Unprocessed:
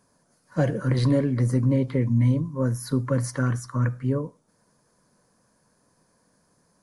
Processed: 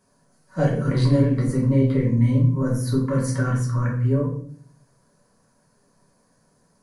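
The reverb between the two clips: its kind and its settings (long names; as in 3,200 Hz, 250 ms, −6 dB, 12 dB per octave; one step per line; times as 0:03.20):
rectangular room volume 70 cubic metres, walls mixed, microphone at 1.1 metres
level −3 dB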